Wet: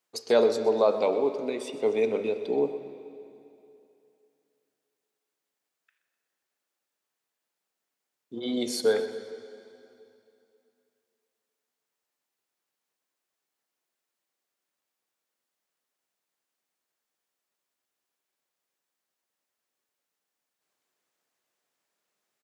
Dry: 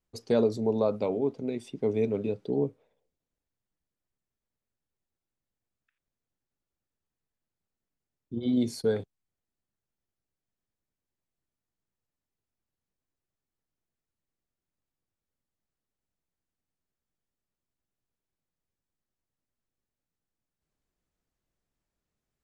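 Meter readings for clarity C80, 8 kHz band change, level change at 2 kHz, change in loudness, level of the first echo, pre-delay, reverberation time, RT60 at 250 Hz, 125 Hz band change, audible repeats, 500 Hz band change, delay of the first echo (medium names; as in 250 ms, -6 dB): 9.5 dB, +8.5 dB, +9.0 dB, +2.5 dB, -16.0 dB, 5 ms, 2.7 s, 2.7 s, -12.5 dB, 2, +4.0 dB, 126 ms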